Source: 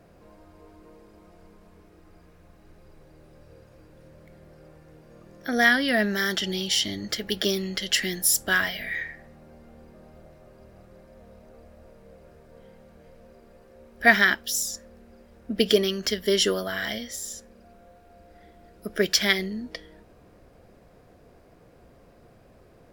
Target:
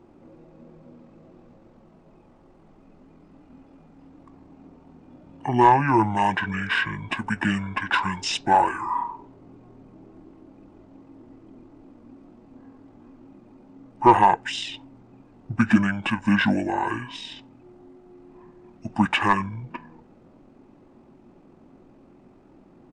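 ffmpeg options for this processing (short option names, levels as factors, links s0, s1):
-filter_complex "[0:a]asplit=2[s0][s1];[s1]highpass=f=720:p=1,volume=3.98,asoftclip=type=tanh:threshold=0.75[s2];[s0][s2]amix=inputs=2:normalize=0,lowpass=f=1600:p=1,volume=0.501,asetrate=22696,aresample=44100,atempo=1.94306,equalizer=f=65:w=1:g=-7.5,volume=1.33"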